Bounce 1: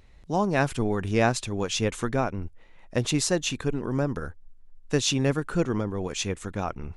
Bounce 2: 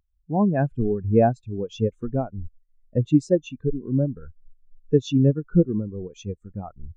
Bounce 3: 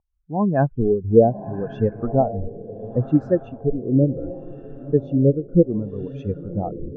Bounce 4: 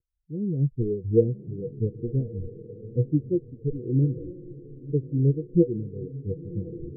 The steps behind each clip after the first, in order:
in parallel at +2.5 dB: compressor, threshold -33 dBFS, peak gain reduction 15.5 dB; on the sum: spectral expander 2.5:1; gain +1.5 dB
AGC gain up to 12.5 dB; diffused feedback echo 1.022 s, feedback 41%, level -14 dB; LFO low-pass sine 0.69 Hz 440–1600 Hz; gain -5 dB
rippled Chebyshev low-pass 500 Hz, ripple 9 dB; gain -1 dB

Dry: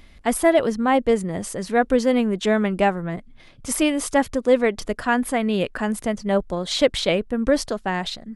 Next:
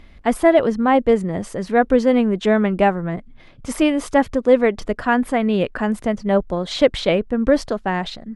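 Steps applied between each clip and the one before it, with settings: LPF 2300 Hz 6 dB/oct; gain +3.5 dB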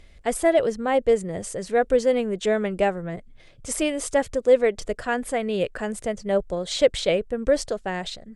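graphic EQ 250/500/1000/8000 Hz -8/+5/-7/+12 dB; gain -4.5 dB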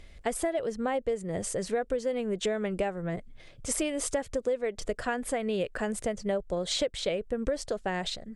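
compressor 10:1, threshold -26 dBFS, peak gain reduction 15 dB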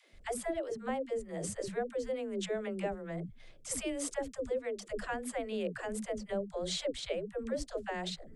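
dispersion lows, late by 0.14 s, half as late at 300 Hz; gain -6 dB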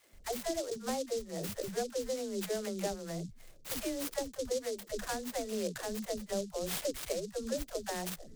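noise-modulated delay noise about 5500 Hz, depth 0.081 ms

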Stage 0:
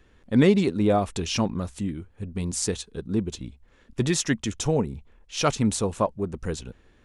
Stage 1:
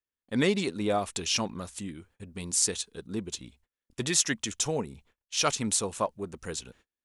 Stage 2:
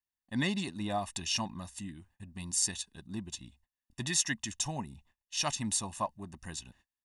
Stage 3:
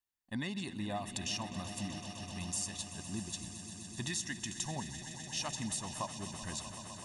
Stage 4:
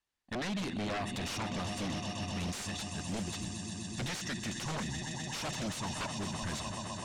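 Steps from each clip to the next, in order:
gate -48 dBFS, range -34 dB; tilt +2.5 dB/oct; gain -3.5 dB
comb 1.1 ms, depth 88%; gain -7 dB
compressor, threshold -35 dBFS, peak gain reduction 11 dB; on a send: swelling echo 0.127 s, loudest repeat 5, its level -14 dB
wavefolder -38 dBFS; air absorption 65 m; gain +8 dB

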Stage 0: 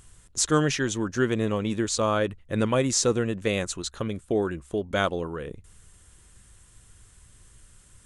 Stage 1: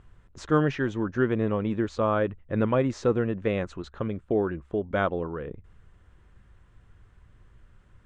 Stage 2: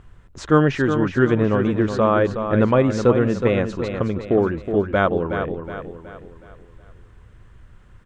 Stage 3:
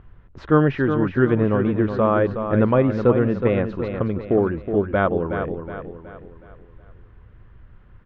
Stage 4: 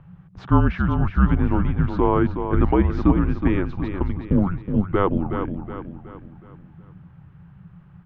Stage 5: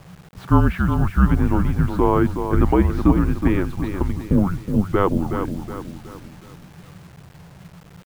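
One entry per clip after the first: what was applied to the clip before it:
LPF 1800 Hz 12 dB/oct
feedback echo 0.369 s, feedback 43%, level -8 dB; gain +7 dB
air absorption 340 m
frequency shift -190 Hz
bit-crush 8-bit; gain +1.5 dB

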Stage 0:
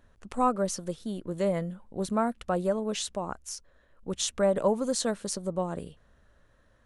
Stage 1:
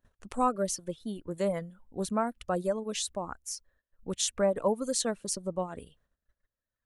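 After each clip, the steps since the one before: gate -58 dBFS, range -17 dB; reverb removal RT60 1.3 s; high shelf 8900 Hz +7.5 dB; gain -1.5 dB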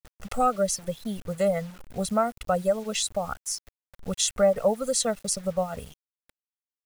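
comb 1.5 ms, depth 92%; in parallel at +0.5 dB: compressor 5:1, threshold -36 dBFS, peak gain reduction 16.5 dB; on the sum: bit-crush 8-bit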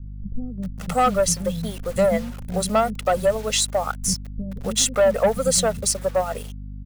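sample leveller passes 2; hum 50 Hz, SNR 12 dB; bands offset in time lows, highs 0.58 s, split 250 Hz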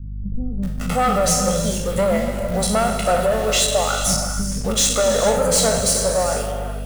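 spectral trails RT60 0.49 s; soft clip -15.5 dBFS, distortion -13 dB; non-linear reverb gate 0.49 s flat, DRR 4.5 dB; gain +3 dB

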